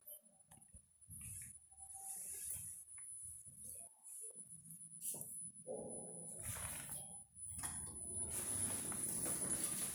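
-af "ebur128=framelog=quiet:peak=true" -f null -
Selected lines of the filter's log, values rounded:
Integrated loudness:
  I:         -44.6 LUFS
  Threshold: -55.0 LUFS
Loudness range:
  LRA:         7.6 LU
  Threshold: -66.4 LUFS
  LRA low:   -49.3 LUFS
  LRA high:  -41.7 LUFS
True peak:
  Peak:      -24.9 dBFS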